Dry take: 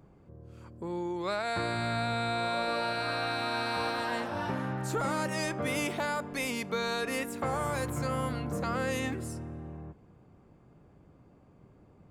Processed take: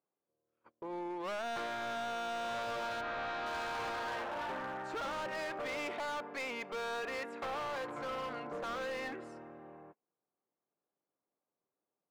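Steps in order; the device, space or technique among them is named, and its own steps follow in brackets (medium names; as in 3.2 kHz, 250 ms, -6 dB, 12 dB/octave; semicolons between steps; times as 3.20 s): walkie-talkie (band-pass 470–2400 Hz; hard clipper -36 dBFS, distortion -8 dB; gate -54 dBFS, range -26 dB); 3.00–3.45 s: low-pass 2.6 kHz -> 4.5 kHz 12 dB/octave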